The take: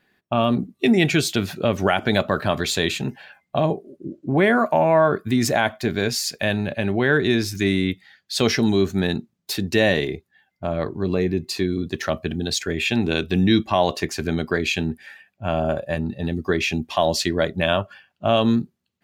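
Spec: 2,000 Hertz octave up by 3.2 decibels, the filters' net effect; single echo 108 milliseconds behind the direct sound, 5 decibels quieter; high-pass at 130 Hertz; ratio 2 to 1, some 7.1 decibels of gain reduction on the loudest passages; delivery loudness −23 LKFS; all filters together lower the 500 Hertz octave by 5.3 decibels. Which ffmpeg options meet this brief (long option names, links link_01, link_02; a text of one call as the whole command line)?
ffmpeg -i in.wav -af "highpass=130,equalizer=frequency=500:width_type=o:gain=-7.5,equalizer=frequency=2000:width_type=o:gain=4.5,acompressor=threshold=-27dB:ratio=2,aecho=1:1:108:0.562,volume=4dB" out.wav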